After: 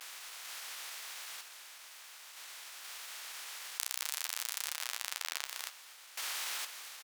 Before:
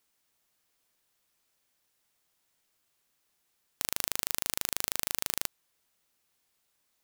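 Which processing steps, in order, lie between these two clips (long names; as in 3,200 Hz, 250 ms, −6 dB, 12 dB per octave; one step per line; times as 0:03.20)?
compressor on every frequency bin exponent 0.4
sample-and-hold tremolo 2.1 Hz, depth 85%
pitch shifter +2 semitones
single-tap delay 240 ms −13 dB
pitch vibrato 1.1 Hz 96 cents
high-shelf EQ 8,000 Hz −11 dB
harmonic generator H 4 −9 dB, 7 −9 dB, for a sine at −7.5 dBFS
flanger 0.63 Hz, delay 6.6 ms, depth 8.8 ms, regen −62%
downward compressor 10 to 1, threshold −47 dBFS, peak gain reduction 8.5 dB
high-pass filter 1,000 Hz 12 dB per octave
level +18 dB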